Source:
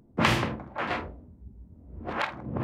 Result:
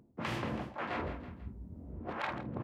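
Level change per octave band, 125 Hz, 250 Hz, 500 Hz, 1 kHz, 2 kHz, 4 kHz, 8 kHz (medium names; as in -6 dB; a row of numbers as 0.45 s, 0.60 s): -8.5 dB, -7.5 dB, -7.0 dB, -8.5 dB, -10.5 dB, -13.5 dB, under -10 dB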